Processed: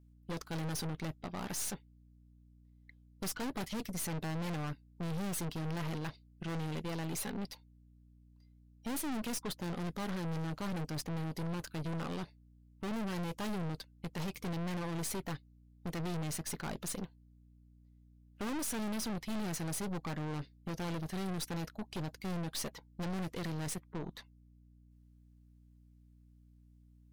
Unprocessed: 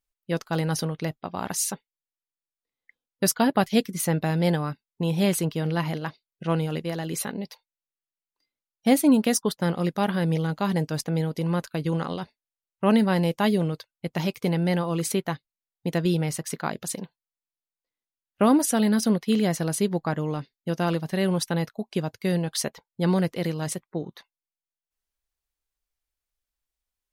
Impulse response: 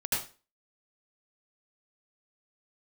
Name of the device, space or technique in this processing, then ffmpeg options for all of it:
valve amplifier with mains hum: -af "aeval=exprs='(tanh(63.1*val(0)+0.6)-tanh(0.6))/63.1':c=same,aeval=exprs='val(0)+0.001*(sin(2*PI*60*n/s)+sin(2*PI*2*60*n/s)/2+sin(2*PI*3*60*n/s)/3+sin(2*PI*4*60*n/s)/4+sin(2*PI*5*60*n/s)/5)':c=same"

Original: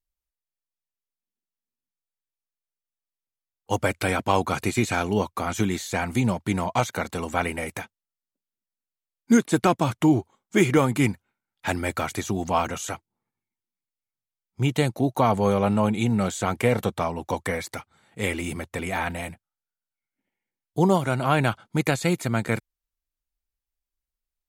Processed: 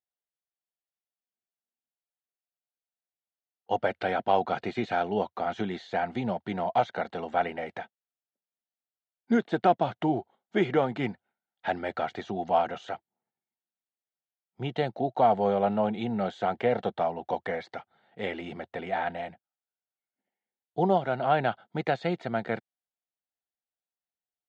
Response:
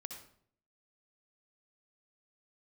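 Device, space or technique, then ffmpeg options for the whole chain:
kitchen radio: -af "highpass=210,equalizer=f=290:t=q:w=4:g=-7,equalizer=f=720:t=q:w=4:g=8,equalizer=f=1100:t=q:w=4:g=-9,equalizer=f=2400:t=q:w=4:g=-9,lowpass=f=3500:w=0.5412,lowpass=f=3500:w=1.3066,volume=0.708"

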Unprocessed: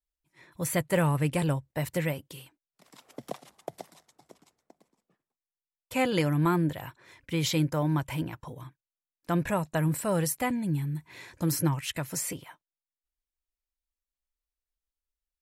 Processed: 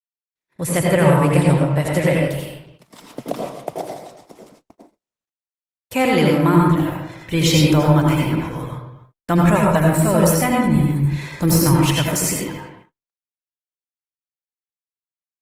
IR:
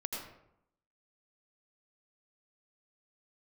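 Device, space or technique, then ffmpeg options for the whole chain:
speakerphone in a meeting room: -filter_complex "[1:a]atrim=start_sample=2205[s0];[0:a][s0]afir=irnorm=-1:irlink=0,asplit=2[s1][s2];[s2]adelay=260,highpass=300,lowpass=3400,asoftclip=type=hard:threshold=0.0944,volume=0.158[s3];[s1][s3]amix=inputs=2:normalize=0,dynaudnorm=f=110:g=9:m=4.47,agate=range=0.00708:threshold=0.00562:ratio=16:detection=peak" -ar 48000 -c:a libopus -b:a 20k

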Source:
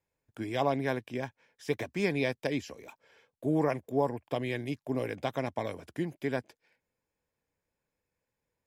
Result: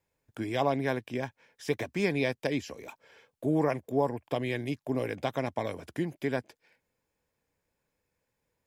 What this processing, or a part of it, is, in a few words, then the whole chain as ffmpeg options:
parallel compression: -filter_complex "[0:a]asplit=2[s0][s1];[s1]acompressor=threshold=0.01:ratio=6,volume=0.668[s2];[s0][s2]amix=inputs=2:normalize=0"

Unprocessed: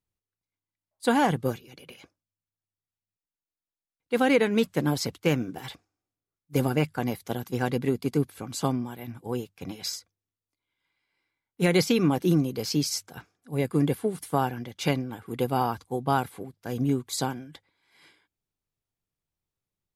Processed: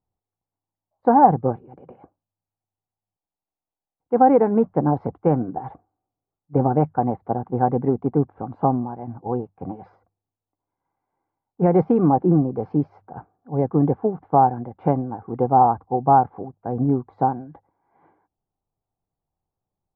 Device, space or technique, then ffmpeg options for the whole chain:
under water: -af "lowpass=f=1100:w=0.5412,lowpass=f=1100:w=1.3066,equalizer=f=780:t=o:w=0.43:g=10,volume=1.78"

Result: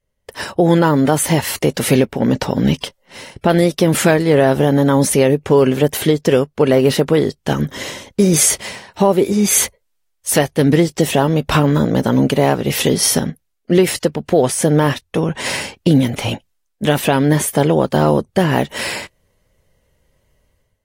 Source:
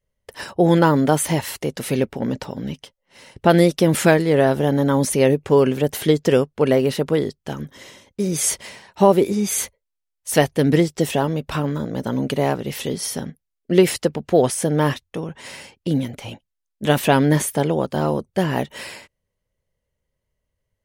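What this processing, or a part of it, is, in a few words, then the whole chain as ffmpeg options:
low-bitrate web radio: -af "dynaudnorm=f=140:g=5:m=4.47,alimiter=limit=0.473:level=0:latency=1:release=295,volume=1.5" -ar 44100 -c:a aac -b:a 48k

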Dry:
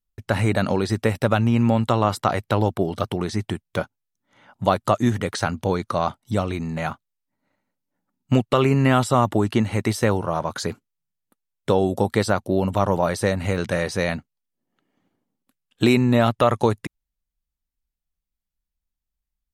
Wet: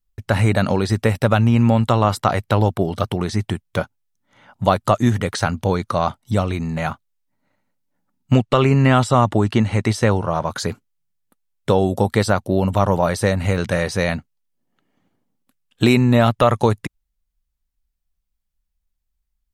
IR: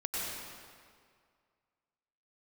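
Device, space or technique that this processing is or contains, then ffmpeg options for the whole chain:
low shelf boost with a cut just above: -filter_complex "[0:a]lowshelf=f=79:g=7,equalizer=f=330:t=o:w=0.72:g=-2.5,asettb=1/sr,asplit=3[s0][s1][s2];[s0]atrim=end=8.344[s3];[s1]atrim=start=8.34:end=10.44,asetpts=PTS-STARTPTS,afade=t=in:d=0.004:c=qsin,afade=t=out:st=2.096:d=0.004:c=qsin,lowpass=8400[s4];[s2]atrim=start=10.436[s5];[s3][s4]acrossfade=d=0.004:c1=hsin:c2=qsin[s6];[s6][s5]acrossfade=d=0.004:c1=qsin:c2=hsin,volume=1.41"

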